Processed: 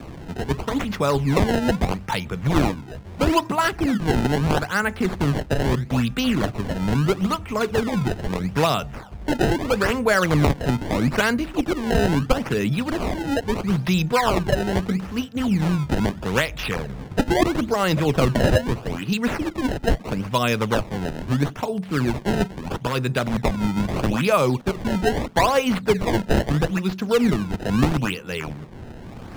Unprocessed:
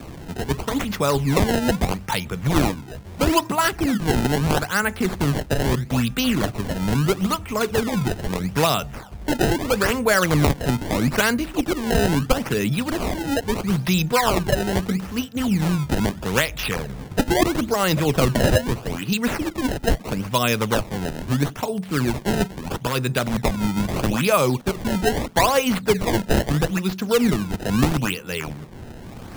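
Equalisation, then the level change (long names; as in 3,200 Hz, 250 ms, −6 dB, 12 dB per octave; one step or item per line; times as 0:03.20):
low-pass filter 3,900 Hz 6 dB per octave
0.0 dB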